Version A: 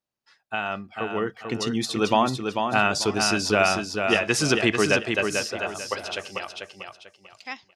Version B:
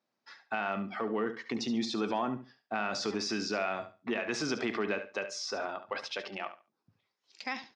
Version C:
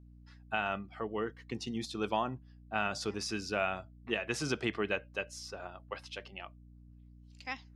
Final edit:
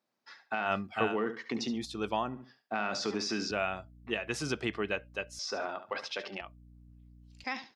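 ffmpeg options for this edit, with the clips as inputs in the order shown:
-filter_complex "[2:a]asplit=3[a][b][c];[1:a]asplit=5[d][e][f][g][h];[d]atrim=end=0.72[i];[0:a]atrim=start=0.62:end=1.18[j];[e]atrim=start=1.08:end=1.84[k];[a]atrim=start=1.68:end=2.44[l];[f]atrim=start=2.28:end=3.512[m];[b]atrim=start=3.508:end=5.392[n];[g]atrim=start=5.388:end=6.412[o];[c]atrim=start=6.408:end=7.442[p];[h]atrim=start=7.438[q];[i][j]acrossfade=d=0.1:c1=tri:c2=tri[r];[r][k]acrossfade=d=0.1:c1=tri:c2=tri[s];[s][l]acrossfade=d=0.16:c1=tri:c2=tri[t];[t][m]acrossfade=d=0.16:c1=tri:c2=tri[u];[u][n]acrossfade=d=0.004:c1=hsin:c2=hsin[v];[v][o]acrossfade=d=0.004:c1=hsin:c2=hsin[w];[w][p]acrossfade=d=0.004:c1=hsin:c2=hsin[x];[x][q]acrossfade=d=0.004:c1=hsin:c2=hsin"

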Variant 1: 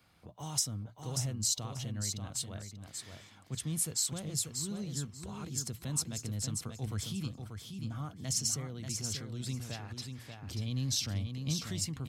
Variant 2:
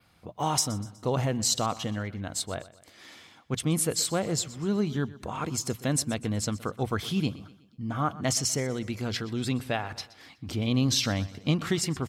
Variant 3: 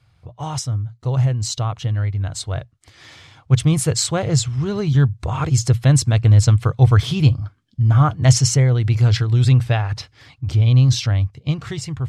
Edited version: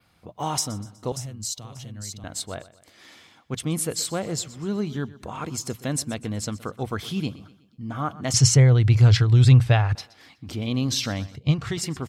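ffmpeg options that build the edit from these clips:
-filter_complex "[2:a]asplit=2[a][b];[1:a]asplit=4[c][d][e][f];[c]atrim=end=1.122[g];[0:a]atrim=start=1.118:end=2.242[h];[d]atrim=start=2.238:end=8.342[i];[a]atrim=start=8.338:end=9.952[j];[e]atrim=start=9.948:end=11.362[k];[b]atrim=start=11.358:end=11.772[l];[f]atrim=start=11.768[m];[g][h]acrossfade=d=0.004:c1=hsin:c2=hsin[n];[n][i]acrossfade=d=0.004:c1=hsin:c2=hsin[o];[o][j]acrossfade=d=0.004:c1=hsin:c2=hsin[p];[p][k]acrossfade=d=0.004:c1=hsin:c2=hsin[q];[q][l]acrossfade=d=0.004:c1=hsin:c2=hsin[r];[r][m]acrossfade=d=0.004:c1=hsin:c2=hsin"

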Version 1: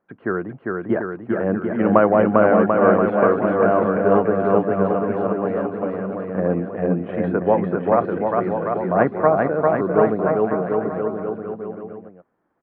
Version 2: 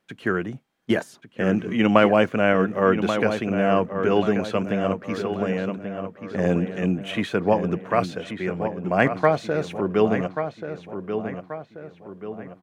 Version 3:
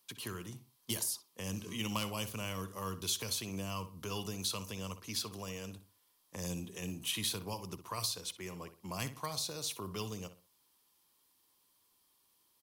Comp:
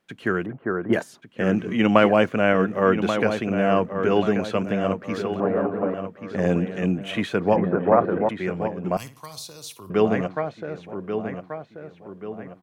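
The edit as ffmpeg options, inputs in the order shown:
-filter_complex "[0:a]asplit=3[a][b][c];[1:a]asplit=5[d][e][f][g][h];[d]atrim=end=0.462[i];[a]atrim=start=0.458:end=0.932[j];[e]atrim=start=0.928:end=5.402[k];[b]atrim=start=5.398:end=5.942[l];[f]atrim=start=5.938:end=7.562[m];[c]atrim=start=7.558:end=8.292[n];[g]atrim=start=8.288:end=8.972[o];[2:a]atrim=start=8.968:end=9.902[p];[h]atrim=start=9.898[q];[i][j]acrossfade=d=0.004:c1=hsin:c2=hsin[r];[r][k]acrossfade=d=0.004:c1=hsin:c2=hsin[s];[s][l]acrossfade=d=0.004:c1=hsin:c2=hsin[t];[t][m]acrossfade=d=0.004:c1=hsin:c2=hsin[u];[u][n]acrossfade=d=0.004:c1=hsin:c2=hsin[v];[v][o]acrossfade=d=0.004:c1=hsin:c2=hsin[w];[w][p]acrossfade=d=0.004:c1=hsin:c2=hsin[x];[x][q]acrossfade=d=0.004:c1=hsin:c2=hsin"

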